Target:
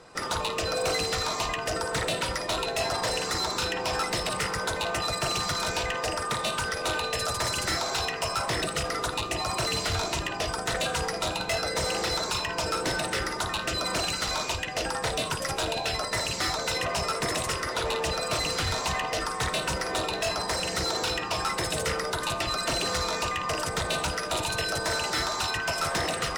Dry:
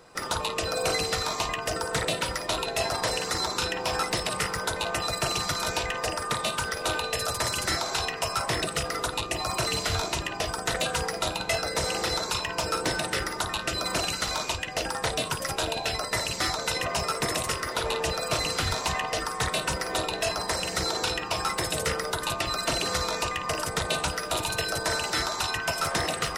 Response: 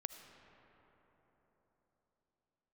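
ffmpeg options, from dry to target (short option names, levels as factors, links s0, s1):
-filter_complex "[0:a]lowpass=10000,asoftclip=type=tanh:threshold=0.0596[s0];[1:a]atrim=start_sample=2205,atrim=end_sample=3528,asetrate=41454,aresample=44100[s1];[s0][s1]afir=irnorm=-1:irlink=0,volume=1.88"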